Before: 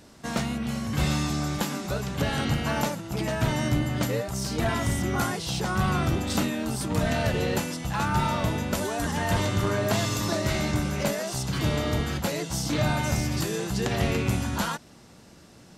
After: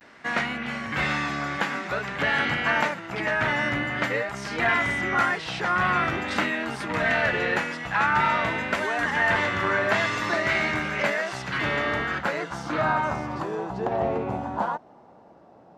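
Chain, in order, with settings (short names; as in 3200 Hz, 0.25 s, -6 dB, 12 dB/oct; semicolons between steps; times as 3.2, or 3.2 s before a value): low-pass sweep 1900 Hz -> 790 Hz, 11.77–14.09; vibrato 0.49 Hz 51 cents; RIAA curve recording; gain +2.5 dB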